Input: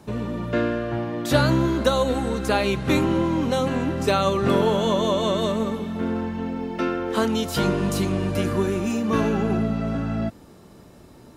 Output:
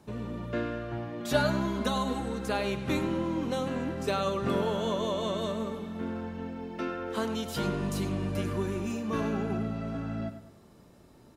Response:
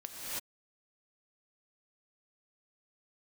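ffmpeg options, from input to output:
-filter_complex "[0:a]asettb=1/sr,asplit=3[s0][s1][s2];[s0]atrim=end=1.204[s3];[s1]atrim=start=1.2:end=2.2,asetpts=PTS-STARTPTS,afade=t=in:d=0.004:c=qsin,afade=t=out:st=0.996:d=0.004:c=qsin,aecho=1:1:4.8:0.75,atrim=end_sample=44100[s4];[s2]atrim=start=2.196[s5];[s3][s4]acrossfade=d=0.004:c1=hsin:c2=qsin[s6];[s6][s5]acrossfade=d=0.004:c1=qsin:c2=hsin,asplit=2[s7][s8];[s8]adelay=101,lowpass=f=4500:p=1,volume=0.282,asplit=2[s9][s10];[s10]adelay=101,lowpass=f=4500:p=1,volume=0.42,asplit=2[s11][s12];[s12]adelay=101,lowpass=f=4500:p=1,volume=0.42,asplit=2[s13][s14];[s14]adelay=101,lowpass=f=4500:p=1,volume=0.42[s15];[s7][s9][s11][s13][s15]amix=inputs=5:normalize=0,volume=0.355"

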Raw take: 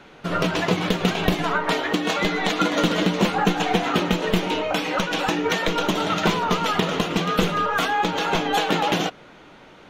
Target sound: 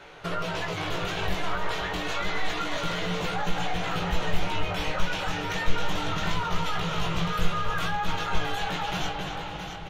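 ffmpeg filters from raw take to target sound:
-filter_complex "[0:a]equalizer=f=230:w=2.3:g=-15,asplit=2[s0][s1];[s1]adelay=269,lowpass=f=3900:p=1,volume=0.282,asplit=2[s2][s3];[s3]adelay=269,lowpass=f=3900:p=1,volume=0.49,asplit=2[s4][s5];[s5]adelay=269,lowpass=f=3900:p=1,volume=0.49,asplit=2[s6][s7];[s7]adelay=269,lowpass=f=3900:p=1,volume=0.49,asplit=2[s8][s9];[s9]adelay=269,lowpass=f=3900:p=1,volume=0.49[s10];[s2][s4][s6][s8][s10]amix=inputs=5:normalize=0[s11];[s0][s11]amix=inputs=2:normalize=0,alimiter=limit=0.119:level=0:latency=1,flanger=delay=17.5:depth=3.7:speed=0.28,acompressor=threshold=0.02:ratio=2,asubboost=boost=8:cutoff=120,asplit=2[s12][s13];[s13]aecho=0:1:669:0.398[s14];[s12][s14]amix=inputs=2:normalize=0,volume=1.58"

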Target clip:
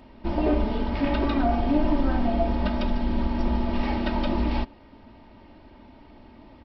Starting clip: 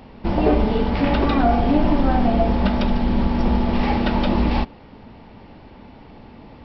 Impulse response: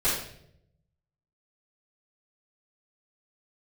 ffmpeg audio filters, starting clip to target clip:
-af "aecho=1:1:3.2:0.53,volume=0.422"

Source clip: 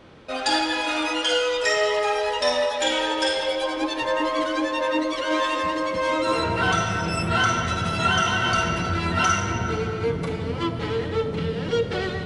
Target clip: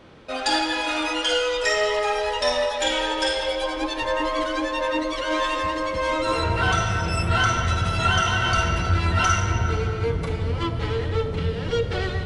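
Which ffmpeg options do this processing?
-af "asubboost=boost=6.5:cutoff=72,aeval=exprs='0.376*(cos(1*acos(clip(val(0)/0.376,-1,1)))-cos(1*PI/2))+0.0237*(cos(2*acos(clip(val(0)/0.376,-1,1)))-cos(2*PI/2))':c=same"

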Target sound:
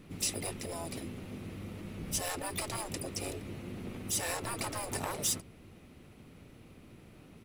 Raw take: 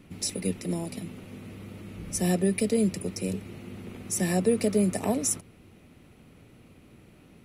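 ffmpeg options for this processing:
-filter_complex "[0:a]volume=11.9,asoftclip=hard,volume=0.0841,asplit=4[s0][s1][s2][s3];[s1]asetrate=22050,aresample=44100,atempo=2,volume=0.316[s4];[s2]asetrate=37084,aresample=44100,atempo=1.18921,volume=0.224[s5];[s3]asetrate=66075,aresample=44100,atempo=0.66742,volume=0.282[s6];[s0][s4][s5][s6]amix=inputs=4:normalize=0,afftfilt=real='re*lt(hypot(re,im),0.141)':imag='im*lt(hypot(re,im),0.141)':win_size=1024:overlap=0.75,volume=0.841"

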